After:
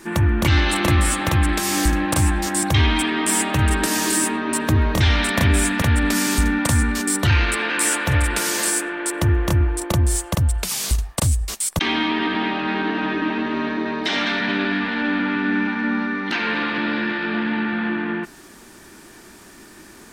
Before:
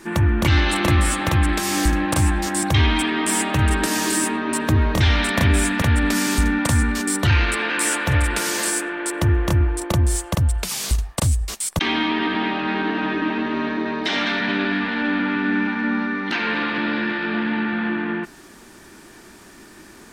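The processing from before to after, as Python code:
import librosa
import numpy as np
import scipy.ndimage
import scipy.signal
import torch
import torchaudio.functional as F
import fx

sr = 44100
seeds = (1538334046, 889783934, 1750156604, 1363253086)

y = fx.high_shelf(x, sr, hz=7500.0, db=4.0)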